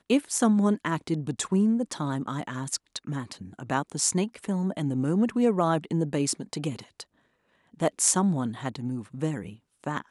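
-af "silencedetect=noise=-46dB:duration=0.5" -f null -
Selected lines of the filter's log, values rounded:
silence_start: 7.03
silence_end: 7.74 | silence_duration: 0.71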